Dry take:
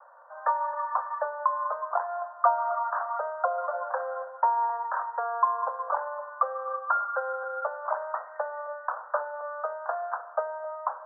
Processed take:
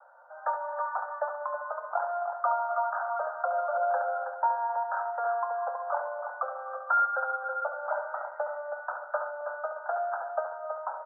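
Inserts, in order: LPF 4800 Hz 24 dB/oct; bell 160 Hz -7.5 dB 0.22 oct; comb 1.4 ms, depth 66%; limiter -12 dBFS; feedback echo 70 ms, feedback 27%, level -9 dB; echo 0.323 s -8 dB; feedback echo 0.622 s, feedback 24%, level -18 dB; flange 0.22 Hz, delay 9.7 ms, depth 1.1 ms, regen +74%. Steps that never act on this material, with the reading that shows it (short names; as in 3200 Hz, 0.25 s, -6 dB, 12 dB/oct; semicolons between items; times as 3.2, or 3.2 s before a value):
LPF 4800 Hz: input band ends at 1700 Hz; bell 160 Hz: input band starts at 430 Hz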